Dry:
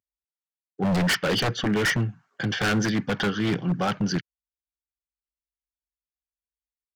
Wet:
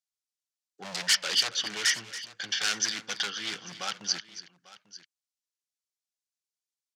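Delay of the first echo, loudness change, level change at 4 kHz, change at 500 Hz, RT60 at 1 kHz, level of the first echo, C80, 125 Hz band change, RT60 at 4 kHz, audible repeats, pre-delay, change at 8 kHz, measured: 278 ms, -3.5 dB, +3.0 dB, -16.5 dB, no reverb, -14.5 dB, no reverb, -27.0 dB, no reverb, 2, no reverb, +6.5 dB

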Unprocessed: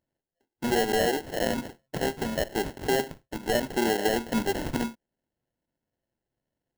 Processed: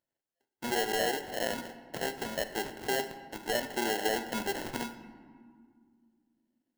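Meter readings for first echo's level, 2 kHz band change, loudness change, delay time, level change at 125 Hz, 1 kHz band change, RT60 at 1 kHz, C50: no echo, -2.5 dB, -5.0 dB, no echo, -11.0 dB, -4.0 dB, 1.9 s, 11.5 dB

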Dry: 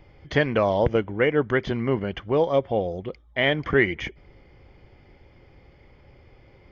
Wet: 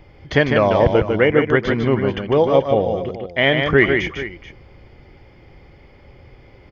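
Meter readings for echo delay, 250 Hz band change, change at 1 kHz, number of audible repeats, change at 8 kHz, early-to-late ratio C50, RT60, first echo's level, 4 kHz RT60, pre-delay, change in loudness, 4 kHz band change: 151 ms, +6.5 dB, +7.0 dB, 2, no reading, no reverb, no reverb, -5.0 dB, no reverb, no reverb, +6.5 dB, +7.0 dB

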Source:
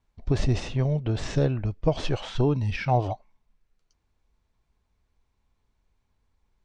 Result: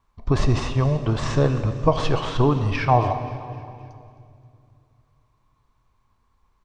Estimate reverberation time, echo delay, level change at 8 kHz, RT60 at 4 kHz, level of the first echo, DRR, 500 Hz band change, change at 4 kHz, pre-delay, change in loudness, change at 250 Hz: 2.4 s, 264 ms, no reading, 2.2 s, -17.5 dB, 8.5 dB, +5.0 dB, +4.5 dB, 16 ms, +4.5 dB, +4.0 dB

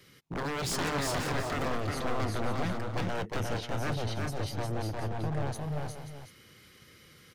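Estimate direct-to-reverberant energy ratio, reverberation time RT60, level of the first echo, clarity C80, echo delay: no reverb, no reverb, -3.5 dB, no reverb, 356 ms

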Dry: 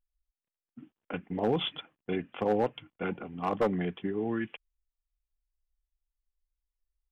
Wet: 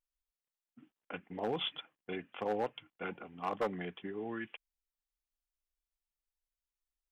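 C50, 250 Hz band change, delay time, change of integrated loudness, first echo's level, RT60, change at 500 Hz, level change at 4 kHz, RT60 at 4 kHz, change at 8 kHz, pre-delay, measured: no reverb, -10.0 dB, no echo, -7.0 dB, no echo, no reverb, -7.5 dB, -3.0 dB, no reverb, no reading, no reverb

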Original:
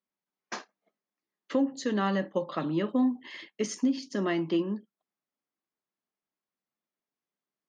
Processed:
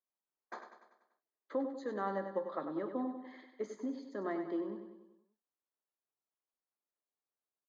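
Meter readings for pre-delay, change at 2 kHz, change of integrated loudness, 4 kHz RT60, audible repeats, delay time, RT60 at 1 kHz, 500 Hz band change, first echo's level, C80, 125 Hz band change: no reverb, -11.0 dB, -9.5 dB, no reverb, 5, 97 ms, no reverb, -6.5 dB, -8.5 dB, no reverb, -17.0 dB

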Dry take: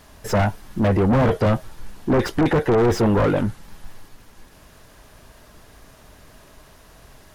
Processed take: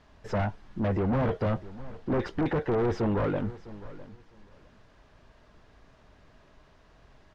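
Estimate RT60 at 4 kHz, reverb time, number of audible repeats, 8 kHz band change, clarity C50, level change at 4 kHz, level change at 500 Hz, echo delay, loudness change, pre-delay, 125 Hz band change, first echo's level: no reverb, no reverb, 2, under -20 dB, no reverb, -13.5 dB, -9.5 dB, 656 ms, -9.5 dB, no reverb, -9.0 dB, -18.0 dB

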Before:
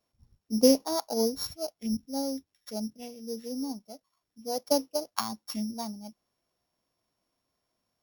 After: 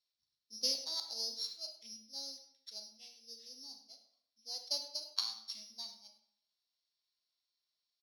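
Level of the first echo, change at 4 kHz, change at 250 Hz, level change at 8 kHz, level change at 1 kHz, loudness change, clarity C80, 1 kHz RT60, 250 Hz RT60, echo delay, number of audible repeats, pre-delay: -14.5 dB, 0.0 dB, -32.5 dB, -8.5 dB, -20.5 dB, -9.0 dB, 10.5 dB, 0.65 s, 0.70 s, 101 ms, 1, 26 ms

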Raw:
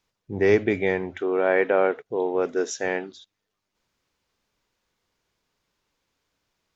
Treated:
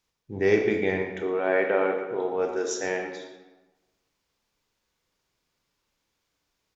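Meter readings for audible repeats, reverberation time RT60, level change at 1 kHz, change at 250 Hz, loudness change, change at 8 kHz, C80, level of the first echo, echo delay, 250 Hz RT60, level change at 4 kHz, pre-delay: 1, 1.2 s, -2.5 dB, -2.5 dB, -2.5 dB, no reading, 6.5 dB, -13.0 dB, 116 ms, 1.2 s, -0.5 dB, 26 ms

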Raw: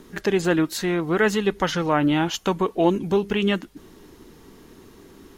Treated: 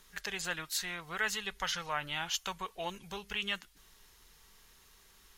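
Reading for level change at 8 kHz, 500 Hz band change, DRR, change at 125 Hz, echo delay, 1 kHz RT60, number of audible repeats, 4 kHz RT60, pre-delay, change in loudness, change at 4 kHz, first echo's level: -3.5 dB, -23.0 dB, no reverb, -22.5 dB, no echo, no reverb, no echo, no reverb, no reverb, -14.0 dB, -5.0 dB, no echo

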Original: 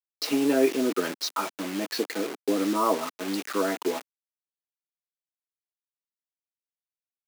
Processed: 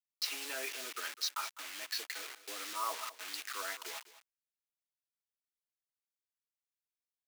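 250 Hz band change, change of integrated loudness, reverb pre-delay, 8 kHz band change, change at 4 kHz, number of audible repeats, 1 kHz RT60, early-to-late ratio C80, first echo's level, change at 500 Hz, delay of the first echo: -33.0 dB, -12.0 dB, no reverb, -4.5 dB, -4.5 dB, 1, no reverb, no reverb, -16.0 dB, -23.5 dB, 204 ms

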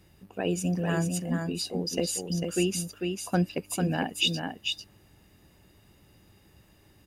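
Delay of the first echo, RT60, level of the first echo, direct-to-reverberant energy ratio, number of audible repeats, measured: 447 ms, no reverb, -5.0 dB, no reverb, 1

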